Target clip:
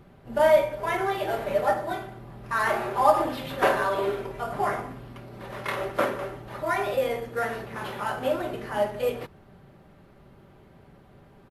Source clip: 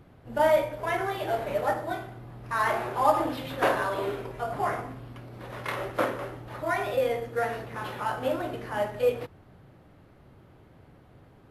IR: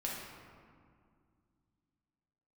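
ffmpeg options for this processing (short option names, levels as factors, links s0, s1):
-af "aecho=1:1:5.1:0.41,volume=1.19"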